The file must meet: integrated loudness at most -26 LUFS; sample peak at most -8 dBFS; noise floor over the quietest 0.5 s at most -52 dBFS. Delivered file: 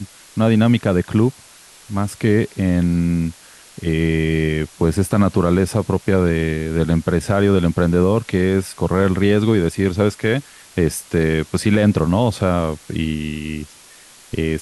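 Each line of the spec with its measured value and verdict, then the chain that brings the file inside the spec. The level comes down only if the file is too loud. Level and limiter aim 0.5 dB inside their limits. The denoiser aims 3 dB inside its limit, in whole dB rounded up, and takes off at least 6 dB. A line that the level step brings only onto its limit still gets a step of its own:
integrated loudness -18.5 LUFS: fail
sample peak -4.0 dBFS: fail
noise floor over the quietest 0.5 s -45 dBFS: fail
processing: gain -8 dB

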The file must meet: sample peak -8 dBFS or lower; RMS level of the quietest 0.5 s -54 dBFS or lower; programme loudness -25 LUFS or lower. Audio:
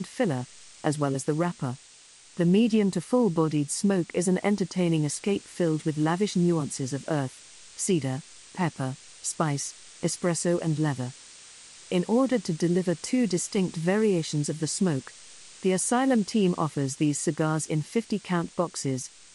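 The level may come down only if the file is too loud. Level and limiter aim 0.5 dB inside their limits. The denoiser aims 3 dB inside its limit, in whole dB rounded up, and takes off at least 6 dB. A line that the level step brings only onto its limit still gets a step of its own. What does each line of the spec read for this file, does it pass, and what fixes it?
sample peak -11.0 dBFS: OK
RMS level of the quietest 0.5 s -53 dBFS: fail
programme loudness -27.0 LUFS: OK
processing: denoiser 6 dB, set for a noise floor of -53 dBFS

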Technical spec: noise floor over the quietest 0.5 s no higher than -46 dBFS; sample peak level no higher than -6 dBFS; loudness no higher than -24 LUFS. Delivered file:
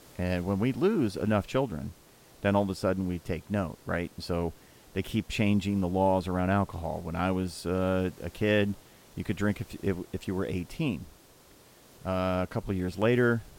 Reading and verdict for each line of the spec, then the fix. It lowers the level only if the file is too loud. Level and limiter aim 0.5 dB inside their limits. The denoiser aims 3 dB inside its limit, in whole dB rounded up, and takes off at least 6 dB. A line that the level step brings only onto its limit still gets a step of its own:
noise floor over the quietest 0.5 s -56 dBFS: OK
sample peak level -11.0 dBFS: OK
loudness -30.0 LUFS: OK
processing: none

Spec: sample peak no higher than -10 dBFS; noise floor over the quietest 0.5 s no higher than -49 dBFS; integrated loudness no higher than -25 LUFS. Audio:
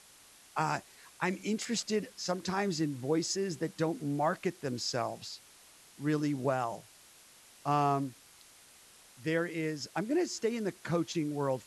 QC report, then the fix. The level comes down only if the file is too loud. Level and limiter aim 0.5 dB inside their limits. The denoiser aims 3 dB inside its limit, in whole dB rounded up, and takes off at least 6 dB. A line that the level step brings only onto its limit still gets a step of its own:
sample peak -16.0 dBFS: OK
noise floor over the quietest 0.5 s -58 dBFS: OK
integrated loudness -33.5 LUFS: OK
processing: none

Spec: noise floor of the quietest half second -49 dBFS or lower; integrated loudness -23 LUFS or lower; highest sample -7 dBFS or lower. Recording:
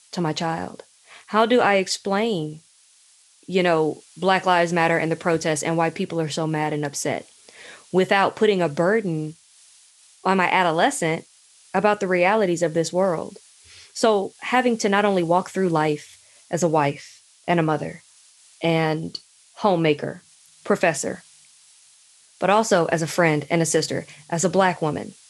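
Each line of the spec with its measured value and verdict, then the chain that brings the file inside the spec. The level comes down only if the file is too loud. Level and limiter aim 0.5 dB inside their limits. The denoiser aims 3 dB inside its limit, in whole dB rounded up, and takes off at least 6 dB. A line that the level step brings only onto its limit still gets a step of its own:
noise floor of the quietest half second -56 dBFS: OK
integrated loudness -21.5 LUFS: fail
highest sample -5.0 dBFS: fail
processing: gain -2 dB; limiter -7.5 dBFS

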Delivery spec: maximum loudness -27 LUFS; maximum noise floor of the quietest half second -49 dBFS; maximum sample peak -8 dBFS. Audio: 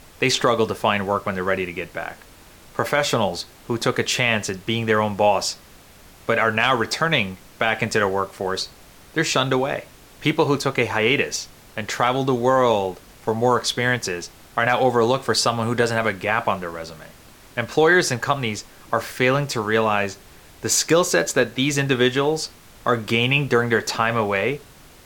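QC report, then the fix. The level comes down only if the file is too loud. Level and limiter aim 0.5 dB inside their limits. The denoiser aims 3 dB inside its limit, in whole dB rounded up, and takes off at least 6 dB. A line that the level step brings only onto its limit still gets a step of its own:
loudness -21.0 LUFS: fail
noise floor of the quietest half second -47 dBFS: fail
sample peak -5.0 dBFS: fail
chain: gain -6.5 dB

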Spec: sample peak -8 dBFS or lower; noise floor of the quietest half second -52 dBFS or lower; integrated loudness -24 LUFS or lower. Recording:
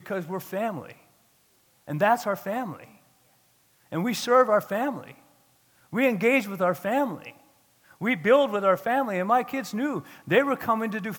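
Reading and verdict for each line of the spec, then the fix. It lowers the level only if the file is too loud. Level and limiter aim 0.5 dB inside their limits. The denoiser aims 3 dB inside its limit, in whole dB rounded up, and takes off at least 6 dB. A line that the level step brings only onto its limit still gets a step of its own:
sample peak -7.0 dBFS: fail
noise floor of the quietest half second -64 dBFS: OK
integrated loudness -25.0 LUFS: OK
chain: limiter -8.5 dBFS

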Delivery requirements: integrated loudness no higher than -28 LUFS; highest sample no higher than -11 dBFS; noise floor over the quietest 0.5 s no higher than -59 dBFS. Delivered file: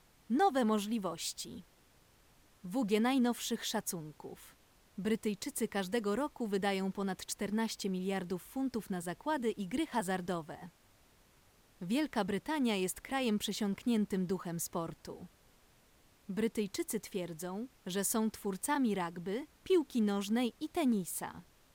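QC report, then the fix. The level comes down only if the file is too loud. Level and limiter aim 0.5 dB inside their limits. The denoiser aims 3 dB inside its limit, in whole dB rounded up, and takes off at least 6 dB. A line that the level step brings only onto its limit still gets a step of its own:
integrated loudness -35.5 LUFS: OK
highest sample -20.0 dBFS: OK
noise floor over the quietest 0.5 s -66 dBFS: OK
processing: none

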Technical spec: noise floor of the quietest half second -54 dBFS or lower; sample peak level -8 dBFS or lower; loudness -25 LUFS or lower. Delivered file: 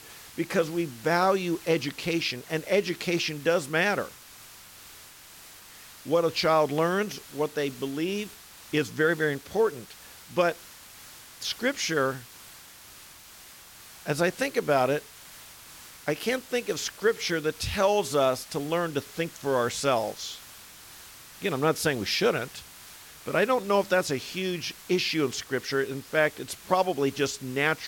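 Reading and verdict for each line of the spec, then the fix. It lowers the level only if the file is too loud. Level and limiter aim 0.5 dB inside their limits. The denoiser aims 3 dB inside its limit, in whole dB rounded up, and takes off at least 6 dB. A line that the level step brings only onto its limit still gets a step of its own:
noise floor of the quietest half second -49 dBFS: fail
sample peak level -9.5 dBFS: OK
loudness -27.5 LUFS: OK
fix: denoiser 8 dB, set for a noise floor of -49 dBFS

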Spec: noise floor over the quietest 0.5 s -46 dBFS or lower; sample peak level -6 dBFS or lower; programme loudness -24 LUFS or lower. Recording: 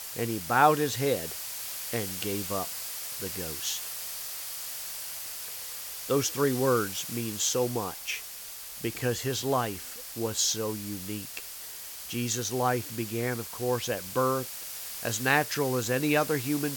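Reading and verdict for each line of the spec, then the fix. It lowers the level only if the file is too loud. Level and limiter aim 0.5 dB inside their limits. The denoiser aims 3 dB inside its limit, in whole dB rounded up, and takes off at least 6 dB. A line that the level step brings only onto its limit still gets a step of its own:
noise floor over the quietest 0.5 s -42 dBFS: fail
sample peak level -7.5 dBFS: OK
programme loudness -29.5 LUFS: OK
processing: denoiser 7 dB, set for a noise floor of -42 dBFS

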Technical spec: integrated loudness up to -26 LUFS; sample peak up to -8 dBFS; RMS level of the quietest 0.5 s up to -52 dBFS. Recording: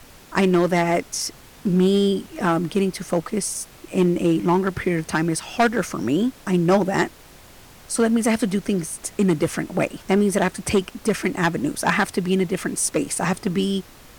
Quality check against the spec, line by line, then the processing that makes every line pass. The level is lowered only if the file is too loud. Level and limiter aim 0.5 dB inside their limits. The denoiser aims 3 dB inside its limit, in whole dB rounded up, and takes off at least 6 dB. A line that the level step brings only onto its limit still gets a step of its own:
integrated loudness -22.0 LUFS: fail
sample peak -10.0 dBFS: OK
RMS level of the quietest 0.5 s -46 dBFS: fail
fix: denoiser 6 dB, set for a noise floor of -46 dBFS; gain -4.5 dB

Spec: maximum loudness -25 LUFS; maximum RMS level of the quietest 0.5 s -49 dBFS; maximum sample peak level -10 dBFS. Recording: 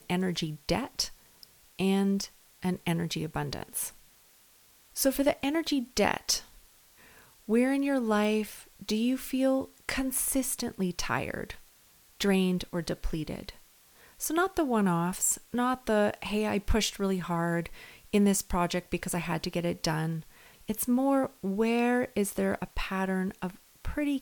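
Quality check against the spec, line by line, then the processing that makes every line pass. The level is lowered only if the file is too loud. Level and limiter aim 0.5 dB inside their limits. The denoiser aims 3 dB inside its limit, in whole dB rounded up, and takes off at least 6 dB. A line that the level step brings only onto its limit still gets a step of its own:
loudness -30.0 LUFS: OK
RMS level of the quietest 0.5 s -60 dBFS: OK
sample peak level -10.5 dBFS: OK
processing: none

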